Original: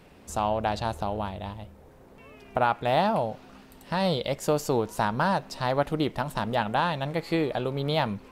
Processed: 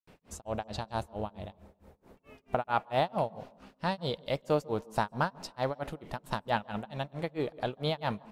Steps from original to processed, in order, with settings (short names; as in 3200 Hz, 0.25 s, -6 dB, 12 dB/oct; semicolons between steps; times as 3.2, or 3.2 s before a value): grains 0.203 s, grains 4.5/s, pitch spread up and down by 0 st; on a send: reverb RT60 0.75 s, pre-delay 0.14 s, DRR 24 dB; on the sum: gain -2 dB